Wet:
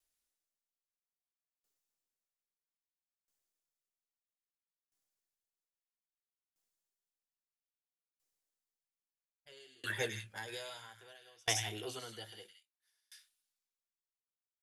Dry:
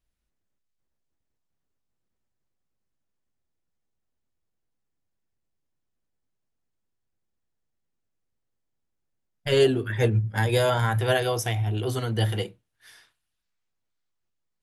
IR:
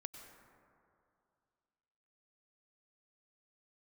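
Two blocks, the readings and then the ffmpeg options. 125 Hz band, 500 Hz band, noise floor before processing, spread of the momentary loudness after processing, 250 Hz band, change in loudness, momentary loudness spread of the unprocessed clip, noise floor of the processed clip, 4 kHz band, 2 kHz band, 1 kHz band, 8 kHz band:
-26.0 dB, -22.0 dB, -79 dBFS, 23 LU, -22.5 dB, -15.5 dB, 7 LU, under -85 dBFS, -10.0 dB, -11.5 dB, -18.0 dB, -3.5 dB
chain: -filter_complex "[0:a]acrossover=split=7500[a][b];[b]acompressor=threshold=-57dB:ratio=4:attack=1:release=60[c];[a][c]amix=inputs=2:normalize=0,bass=f=250:g=-15,treble=f=4k:g=10,acrossover=split=1500[d][e];[d]alimiter=limit=-22dB:level=0:latency=1:release=199[f];[e]aecho=1:1:104|164|189:0.631|0.596|0.224[g];[f][g]amix=inputs=2:normalize=0,aeval=exprs='val(0)*pow(10,-35*if(lt(mod(0.61*n/s,1),2*abs(0.61)/1000),1-mod(0.61*n/s,1)/(2*abs(0.61)/1000),(mod(0.61*n/s,1)-2*abs(0.61)/1000)/(1-2*abs(0.61)/1000))/20)':c=same,volume=-3dB"

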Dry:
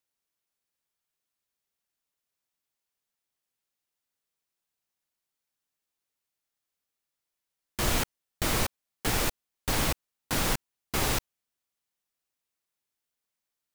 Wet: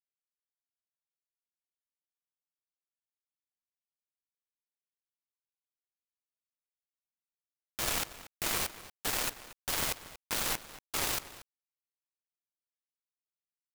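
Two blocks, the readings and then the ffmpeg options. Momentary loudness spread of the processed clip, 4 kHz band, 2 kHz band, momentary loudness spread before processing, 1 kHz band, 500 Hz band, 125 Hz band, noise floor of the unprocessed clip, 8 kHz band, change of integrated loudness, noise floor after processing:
9 LU, -3.0 dB, -4.0 dB, 7 LU, -5.5 dB, -8.0 dB, -14.0 dB, under -85 dBFS, -2.0 dB, -3.5 dB, under -85 dBFS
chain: -filter_complex "[0:a]lowshelf=f=350:g=-10.5,acrusher=bits=3:mix=0:aa=0.5,asplit=2[a][b];[b]adelay=233.2,volume=-15dB,highshelf=f=4k:g=-5.25[c];[a][c]amix=inputs=2:normalize=0"

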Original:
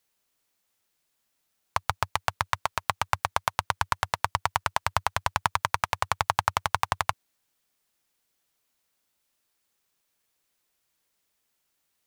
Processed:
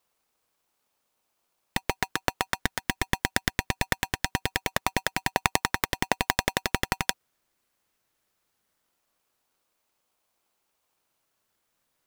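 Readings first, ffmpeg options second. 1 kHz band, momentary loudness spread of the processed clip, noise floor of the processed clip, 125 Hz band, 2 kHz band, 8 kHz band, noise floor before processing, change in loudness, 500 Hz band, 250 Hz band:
-5.5 dB, 4 LU, -77 dBFS, +1.5 dB, +3.0 dB, +4.0 dB, -77 dBFS, 0.0 dB, +3.0 dB, +14.0 dB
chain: -filter_complex "[0:a]asplit=2[a][b];[b]acrusher=samples=30:mix=1:aa=0.000001:lfo=1:lforange=30:lforate=0.22,volume=-5dB[c];[a][c]amix=inputs=2:normalize=0,aeval=exprs='val(0)*sgn(sin(2*PI*860*n/s))':c=same,volume=-2dB"

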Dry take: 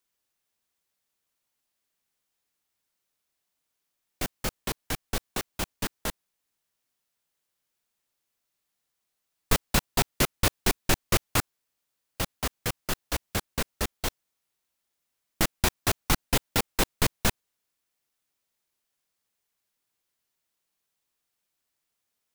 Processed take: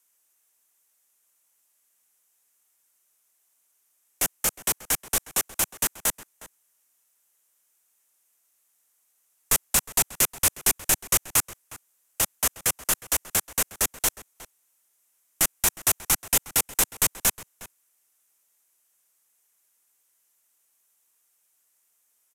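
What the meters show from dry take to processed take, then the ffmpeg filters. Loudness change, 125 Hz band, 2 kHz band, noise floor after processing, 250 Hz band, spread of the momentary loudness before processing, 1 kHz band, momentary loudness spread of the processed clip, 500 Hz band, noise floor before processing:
+5.5 dB, -8.0 dB, +0.5 dB, -70 dBFS, -6.5 dB, 9 LU, -1.0 dB, 6 LU, -3.5 dB, -82 dBFS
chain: -filter_complex "[0:a]asplit=2[a][b];[b]alimiter=limit=-16dB:level=0:latency=1:release=101,volume=0.5dB[c];[a][c]amix=inputs=2:normalize=0,asplit=2[d][e];[e]highpass=f=720:p=1,volume=14dB,asoftclip=type=tanh:threshold=-4.5dB[f];[d][f]amix=inputs=2:normalize=0,lowpass=f=3.1k:p=1,volume=-6dB,acrossover=split=160|2200[g][h][i];[h]asoftclip=type=tanh:threshold=-18.5dB[j];[g][j][i]amix=inputs=3:normalize=0,asplit=2[k][l];[l]adelay=361.5,volume=-16dB,highshelf=f=4k:g=-8.13[m];[k][m]amix=inputs=2:normalize=0,aexciter=amount=6.3:drive=5.6:freq=6.2k,aresample=32000,aresample=44100,volume=-7.5dB"

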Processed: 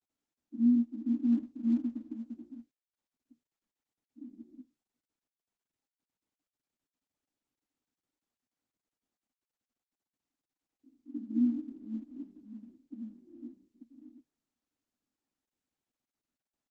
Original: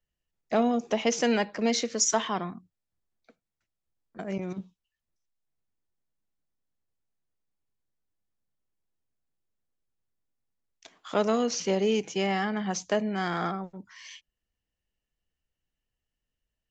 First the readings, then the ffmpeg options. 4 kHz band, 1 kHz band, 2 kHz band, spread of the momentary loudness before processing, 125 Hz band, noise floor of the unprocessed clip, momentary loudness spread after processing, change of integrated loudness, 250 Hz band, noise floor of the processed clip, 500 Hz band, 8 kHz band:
under -35 dB, under -35 dB, under -35 dB, 16 LU, under -10 dB, under -85 dBFS, 22 LU, -4.0 dB, -0.5 dB, under -85 dBFS, under -30 dB, under -40 dB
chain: -af "acrusher=samples=17:mix=1:aa=0.000001:lfo=1:lforange=27.2:lforate=0.29,asuperpass=centerf=270:order=12:qfactor=3.1,volume=3.5dB" -ar 48000 -c:a libopus -b:a 12k

